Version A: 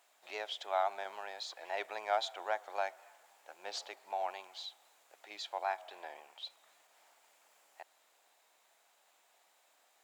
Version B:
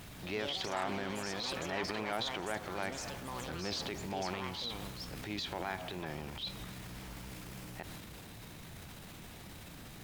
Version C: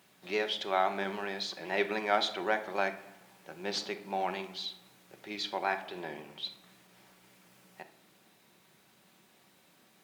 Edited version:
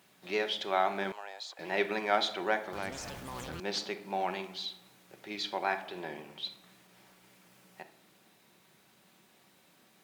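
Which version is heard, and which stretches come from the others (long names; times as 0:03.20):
C
0:01.12–0:01.59: punch in from A
0:02.73–0:03.60: punch in from B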